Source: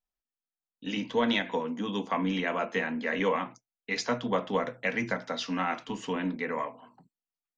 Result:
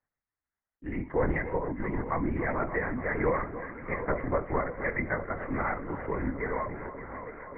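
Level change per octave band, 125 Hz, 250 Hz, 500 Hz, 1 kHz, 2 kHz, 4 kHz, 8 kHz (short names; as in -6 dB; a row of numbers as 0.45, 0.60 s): +5.5 dB, -2.0 dB, +0.5 dB, -0.5 dB, -1.0 dB, under -35 dB, n/a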